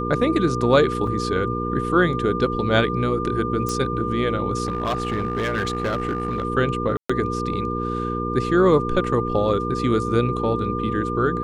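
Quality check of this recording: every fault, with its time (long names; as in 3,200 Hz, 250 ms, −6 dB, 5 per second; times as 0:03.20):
mains hum 60 Hz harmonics 8 −27 dBFS
whistle 1,200 Hz −27 dBFS
0:01.07: drop-out 4.2 ms
0:03.69: click −12 dBFS
0:04.65–0:06.45: clipping −19 dBFS
0:06.97–0:07.09: drop-out 125 ms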